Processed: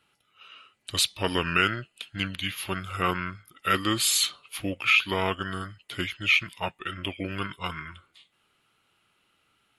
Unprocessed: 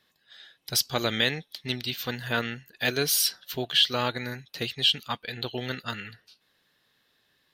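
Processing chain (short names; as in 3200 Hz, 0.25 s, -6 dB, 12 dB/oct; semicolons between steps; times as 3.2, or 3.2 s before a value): dynamic EQ 1800 Hz, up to +5 dB, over -43 dBFS, Q 4.2; varispeed -23%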